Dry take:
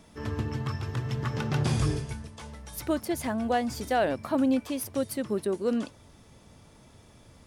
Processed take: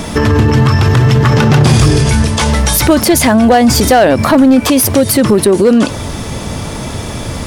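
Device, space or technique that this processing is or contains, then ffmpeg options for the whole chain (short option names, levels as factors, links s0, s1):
loud club master: -filter_complex "[0:a]asettb=1/sr,asplit=3[s0][s1][s2];[s0]atrim=end=1.744[s3];[s1]atrim=start=1.74:end=3.48,asetpts=PTS-STARTPTS,afade=t=in:d=0.004:c=qsin,afade=t=out:st=1.736:d=0.004:c=qsin,equalizer=f=4800:w=0.49:g=3[s4];[s2]atrim=start=3.476[s5];[s3][s4]acrossfade=d=0.004:c1=hsin:c2=qsin[s6];[s6][s5]acrossfade=d=0.004:c1=qsin:c2=hsin,acompressor=threshold=0.0355:ratio=2,asoftclip=type=hard:threshold=0.0596,alimiter=level_in=53.1:limit=0.891:release=50:level=0:latency=1,volume=0.891"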